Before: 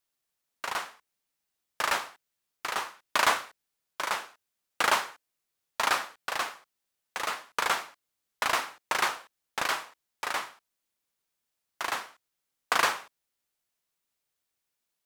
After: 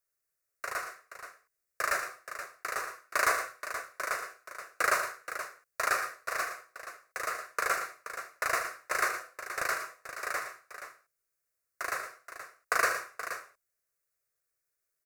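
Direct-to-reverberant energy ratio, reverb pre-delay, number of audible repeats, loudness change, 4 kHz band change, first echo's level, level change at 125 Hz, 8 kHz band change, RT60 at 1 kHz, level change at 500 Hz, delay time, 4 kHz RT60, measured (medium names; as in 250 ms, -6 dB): no reverb, no reverb, 3, -3.0 dB, -10.0 dB, -12.5 dB, -3.5 dB, -1.0 dB, no reverb, -0.5 dB, 78 ms, no reverb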